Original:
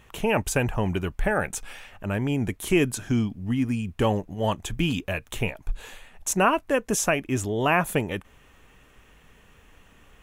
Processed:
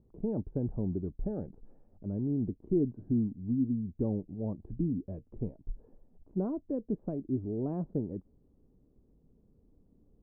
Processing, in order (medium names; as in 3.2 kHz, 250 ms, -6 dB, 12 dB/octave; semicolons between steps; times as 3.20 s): four-pole ladder low-pass 380 Hz, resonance 20%; bass shelf 280 Hz -11.5 dB; trim +6.5 dB